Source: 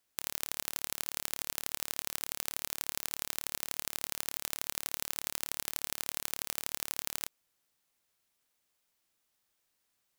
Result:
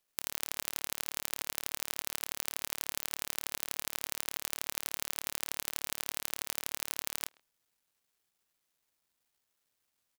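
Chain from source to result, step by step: speakerphone echo 0.13 s, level -24 dB; requantised 12-bit, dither none

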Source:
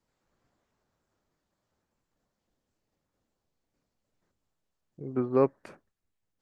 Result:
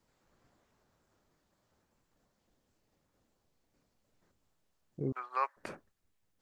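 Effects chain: 5.12–5.57 HPF 990 Hz 24 dB/oct; gain +4.5 dB

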